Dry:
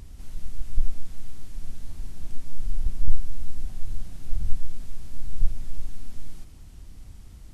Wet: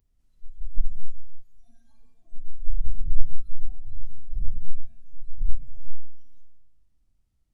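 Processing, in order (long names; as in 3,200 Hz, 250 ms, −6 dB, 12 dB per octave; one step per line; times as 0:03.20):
noise reduction from a noise print of the clip's start 25 dB
0:02.14–0:03.00: flanger swept by the level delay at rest 11.8 ms, full sweep at −15.5 dBFS
comb and all-pass reverb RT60 1 s, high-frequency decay 0.75×, pre-delay 15 ms, DRR 1 dB
level −4.5 dB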